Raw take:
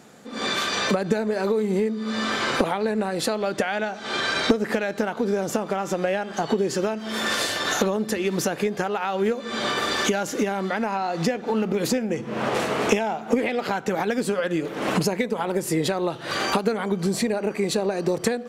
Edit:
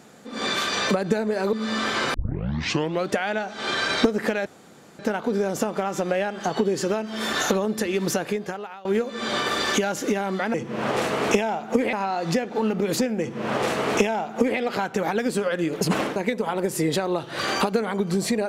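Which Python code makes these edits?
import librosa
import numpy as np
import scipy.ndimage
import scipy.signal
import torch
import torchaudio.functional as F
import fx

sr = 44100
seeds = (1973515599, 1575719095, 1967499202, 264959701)

y = fx.edit(x, sr, fx.cut(start_s=1.53, length_s=0.46),
    fx.tape_start(start_s=2.6, length_s=0.96),
    fx.insert_room_tone(at_s=4.92, length_s=0.53),
    fx.cut(start_s=7.26, length_s=0.38),
    fx.fade_out_to(start_s=8.47, length_s=0.69, floor_db=-22.5),
    fx.duplicate(start_s=12.12, length_s=1.39, to_s=10.85),
    fx.reverse_span(start_s=14.73, length_s=0.35), tone=tone)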